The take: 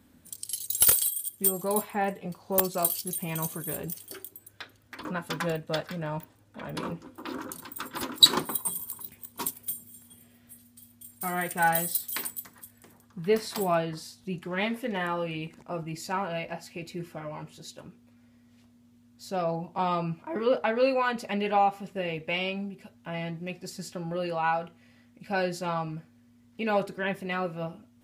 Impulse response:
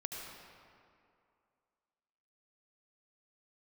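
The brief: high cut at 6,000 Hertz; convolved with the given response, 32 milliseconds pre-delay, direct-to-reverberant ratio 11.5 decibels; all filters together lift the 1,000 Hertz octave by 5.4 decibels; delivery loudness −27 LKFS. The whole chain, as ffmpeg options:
-filter_complex "[0:a]lowpass=6000,equalizer=frequency=1000:width_type=o:gain=7,asplit=2[link_01][link_02];[1:a]atrim=start_sample=2205,adelay=32[link_03];[link_02][link_03]afir=irnorm=-1:irlink=0,volume=-11.5dB[link_04];[link_01][link_04]amix=inputs=2:normalize=0,volume=1dB"

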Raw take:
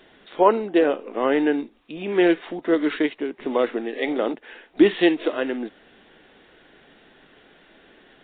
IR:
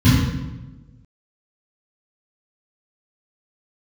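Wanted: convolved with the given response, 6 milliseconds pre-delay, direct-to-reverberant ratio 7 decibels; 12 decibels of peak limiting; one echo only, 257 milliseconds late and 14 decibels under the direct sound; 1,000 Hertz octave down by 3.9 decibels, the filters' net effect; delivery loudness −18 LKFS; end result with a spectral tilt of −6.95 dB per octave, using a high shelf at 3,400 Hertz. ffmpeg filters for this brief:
-filter_complex "[0:a]equalizer=frequency=1000:width_type=o:gain=-4,highshelf=frequency=3400:gain=-8,alimiter=limit=-16.5dB:level=0:latency=1,aecho=1:1:257:0.2,asplit=2[link_01][link_02];[1:a]atrim=start_sample=2205,adelay=6[link_03];[link_02][link_03]afir=irnorm=-1:irlink=0,volume=-26.5dB[link_04];[link_01][link_04]amix=inputs=2:normalize=0,volume=2.5dB"

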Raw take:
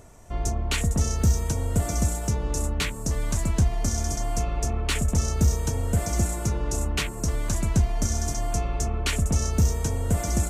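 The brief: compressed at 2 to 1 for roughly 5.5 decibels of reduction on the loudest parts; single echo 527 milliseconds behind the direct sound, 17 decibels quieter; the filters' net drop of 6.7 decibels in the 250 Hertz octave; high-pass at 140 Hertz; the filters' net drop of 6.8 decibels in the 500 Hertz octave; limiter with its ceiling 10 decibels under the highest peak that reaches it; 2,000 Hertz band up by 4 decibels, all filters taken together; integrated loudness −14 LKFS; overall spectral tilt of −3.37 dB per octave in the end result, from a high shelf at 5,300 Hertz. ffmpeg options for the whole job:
ffmpeg -i in.wav -af "highpass=140,equalizer=frequency=250:width_type=o:gain=-6.5,equalizer=frequency=500:width_type=o:gain=-8,equalizer=frequency=2000:width_type=o:gain=6,highshelf=frequency=5300:gain=-4.5,acompressor=threshold=-33dB:ratio=2,alimiter=level_in=2dB:limit=-24dB:level=0:latency=1,volume=-2dB,aecho=1:1:527:0.141,volume=23dB" out.wav

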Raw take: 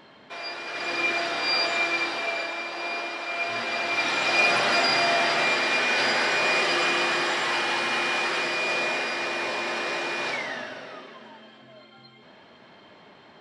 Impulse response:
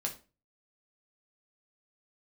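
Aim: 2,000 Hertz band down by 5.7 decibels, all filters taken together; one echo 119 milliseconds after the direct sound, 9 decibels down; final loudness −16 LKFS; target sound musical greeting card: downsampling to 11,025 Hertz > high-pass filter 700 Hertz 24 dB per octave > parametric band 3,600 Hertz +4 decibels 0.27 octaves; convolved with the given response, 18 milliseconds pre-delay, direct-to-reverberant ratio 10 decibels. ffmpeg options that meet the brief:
-filter_complex "[0:a]equalizer=frequency=2000:width_type=o:gain=-7.5,aecho=1:1:119:0.355,asplit=2[link_01][link_02];[1:a]atrim=start_sample=2205,adelay=18[link_03];[link_02][link_03]afir=irnorm=-1:irlink=0,volume=-12dB[link_04];[link_01][link_04]amix=inputs=2:normalize=0,aresample=11025,aresample=44100,highpass=frequency=700:width=0.5412,highpass=frequency=700:width=1.3066,equalizer=frequency=3600:width_type=o:width=0.27:gain=4,volume=11dB"

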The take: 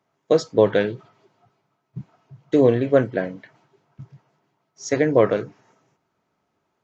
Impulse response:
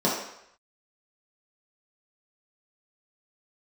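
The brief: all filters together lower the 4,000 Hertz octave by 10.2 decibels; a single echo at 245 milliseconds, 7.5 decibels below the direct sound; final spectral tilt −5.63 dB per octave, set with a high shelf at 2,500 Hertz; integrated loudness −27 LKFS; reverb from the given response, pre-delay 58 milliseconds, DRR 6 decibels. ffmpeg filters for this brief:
-filter_complex "[0:a]highshelf=frequency=2500:gain=-7.5,equalizer=frequency=4000:width_type=o:gain=-6.5,aecho=1:1:245:0.422,asplit=2[link_01][link_02];[1:a]atrim=start_sample=2205,adelay=58[link_03];[link_02][link_03]afir=irnorm=-1:irlink=0,volume=-20.5dB[link_04];[link_01][link_04]amix=inputs=2:normalize=0,volume=-8.5dB"

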